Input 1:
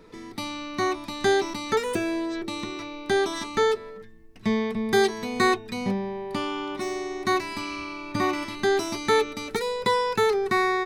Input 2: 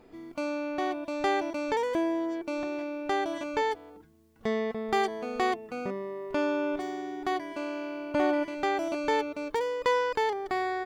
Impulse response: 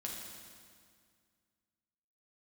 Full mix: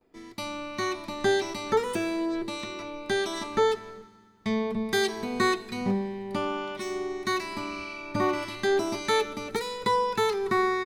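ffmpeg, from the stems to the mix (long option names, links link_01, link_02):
-filter_complex "[0:a]agate=range=-31dB:threshold=-40dB:ratio=16:detection=peak,acrossover=split=1500[link_01][link_02];[link_01]aeval=exprs='val(0)*(1-0.5/2+0.5/2*cos(2*PI*1.7*n/s))':channel_layout=same[link_03];[link_02]aeval=exprs='val(0)*(1-0.5/2-0.5/2*cos(2*PI*1.7*n/s))':channel_layout=same[link_04];[link_03][link_04]amix=inputs=2:normalize=0,volume=-2dB,asplit=2[link_05][link_06];[link_06]volume=-9.5dB[link_07];[1:a]adelay=11,volume=-11.5dB[link_08];[2:a]atrim=start_sample=2205[link_09];[link_07][link_09]afir=irnorm=-1:irlink=0[link_10];[link_05][link_08][link_10]amix=inputs=3:normalize=0"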